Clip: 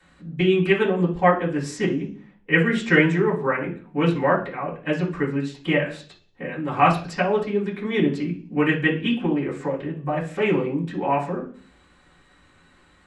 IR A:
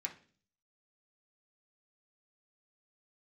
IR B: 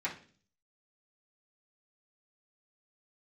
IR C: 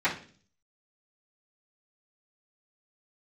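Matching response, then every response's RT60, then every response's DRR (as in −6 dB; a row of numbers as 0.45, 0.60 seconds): C; 0.45, 0.45, 0.45 seconds; −1.0, −10.0, −17.5 decibels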